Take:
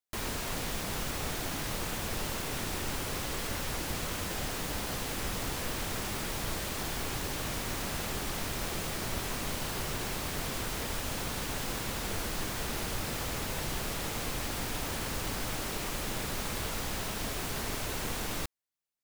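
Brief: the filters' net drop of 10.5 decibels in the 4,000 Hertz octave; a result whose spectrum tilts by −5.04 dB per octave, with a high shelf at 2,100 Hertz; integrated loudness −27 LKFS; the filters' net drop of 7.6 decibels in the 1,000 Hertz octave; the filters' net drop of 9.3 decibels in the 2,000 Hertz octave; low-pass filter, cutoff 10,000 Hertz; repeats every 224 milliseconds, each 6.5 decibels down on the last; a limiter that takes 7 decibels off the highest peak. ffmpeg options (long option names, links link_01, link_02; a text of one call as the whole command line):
ffmpeg -i in.wav -af "lowpass=10000,equalizer=frequency=1000:width_type=o:gain=-7,equalizer=frequency=2000:width_type=o:gain=-4,highshelf=frequency=2100:gain=-8,equalizer=frequency=4000:width_type=o:gain=-4,alimiter=level_in=5.5dB:limit=-24dB:level=0:latency=1,volume=-5.5dB,aecho=1:1:224|448|672|896|1120|1344:0.473|0.222|0.105|0.0491|0.0231|0.0109,volume=13dB" out.wav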